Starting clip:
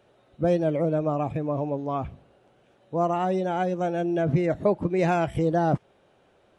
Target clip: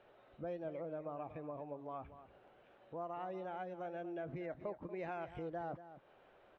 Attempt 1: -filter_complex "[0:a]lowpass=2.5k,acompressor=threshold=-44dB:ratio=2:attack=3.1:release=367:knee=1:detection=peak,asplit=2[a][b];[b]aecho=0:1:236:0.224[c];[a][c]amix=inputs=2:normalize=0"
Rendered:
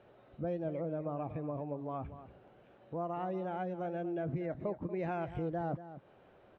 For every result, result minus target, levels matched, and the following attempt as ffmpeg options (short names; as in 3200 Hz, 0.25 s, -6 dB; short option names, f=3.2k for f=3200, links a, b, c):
125 Hz band +5.5 dB; compressor: peak gain reduction -2.5 dB
-filter_complex "[0:a]lowpass=2.5k,equalizer=f=130:w=0.39:g=-11,acompressor=threshold=-44dB:ratio=2:attack=3.1:release=367:knee=1:detection=peak,asplit=2[a][b];[b]aecho=0:1:236:0.224[c];[a][c]amix=inputs=2:normalize=0"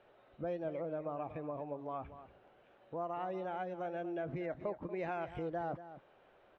compressor: peak gain reduction -4 dB
-filter_complex "[0:a]lowpass=2.5k,equalizer=f=130:w=0.39:g=-11,acompressor=threshold=-52.5dB:ratio=2:attack=3.1:release=367:knee=1:detection=peak,asplit=2[a][b];[b]aecho=0:1:236:0.224[c];[a][c]amix=inputs=2:normalize=0"